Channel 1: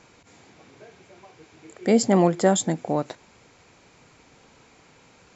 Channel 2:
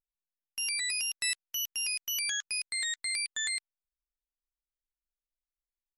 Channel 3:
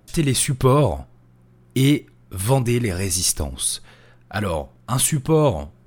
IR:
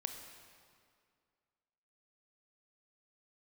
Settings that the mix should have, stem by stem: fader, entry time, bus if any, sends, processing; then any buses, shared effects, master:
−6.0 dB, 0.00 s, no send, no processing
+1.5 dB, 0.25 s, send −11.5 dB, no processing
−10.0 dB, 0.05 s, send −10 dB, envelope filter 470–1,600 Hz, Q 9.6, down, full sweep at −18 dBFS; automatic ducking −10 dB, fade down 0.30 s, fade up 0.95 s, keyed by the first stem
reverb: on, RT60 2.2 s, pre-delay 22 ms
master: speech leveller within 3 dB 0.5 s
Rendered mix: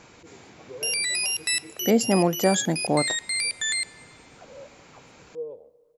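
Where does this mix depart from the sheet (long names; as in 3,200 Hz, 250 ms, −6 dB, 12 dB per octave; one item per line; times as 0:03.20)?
stem 1 −6.0 dB → +0.5 dB
stem 2: send −11.5 dB → −4 dB
reverb return −7.0 dB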